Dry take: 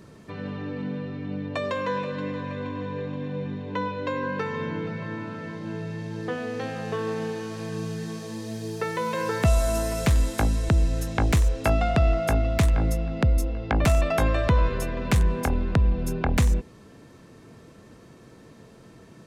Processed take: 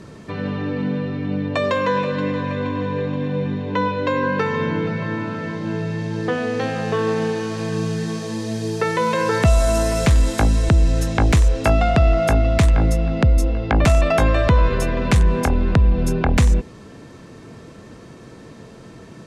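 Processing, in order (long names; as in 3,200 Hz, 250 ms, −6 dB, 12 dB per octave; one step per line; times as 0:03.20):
low-pass filter 9,400 Hz 12 dB per octave
in parallel at +1 dB: brickwall limiter −19.5 dBFS, peak gain reduction 8 dB
on the sum: level +2 dB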